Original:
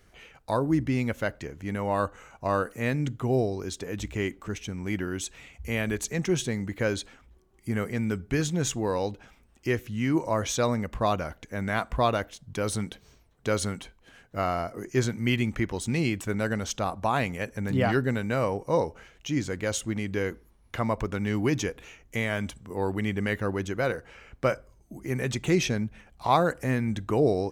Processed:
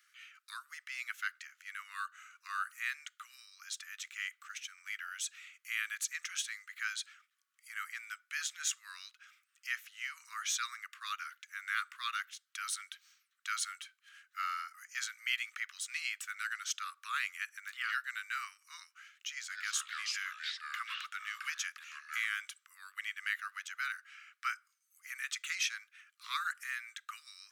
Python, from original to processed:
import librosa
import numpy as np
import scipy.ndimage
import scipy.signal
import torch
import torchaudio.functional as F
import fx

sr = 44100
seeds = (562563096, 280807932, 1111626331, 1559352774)

y = fx.echo_pitch(x, sr, ms=187, semitones=-5, count=3, db_per_echo=-3.0, at=(19.31, 22.3))
y = scipy.signal.sosfilt(scipy.signal.butter(16, 1200.0, 'highpass', fs=sr, output='sos'), y)
y = F.gain(torch.from_numpy(y), -3.0).numpy()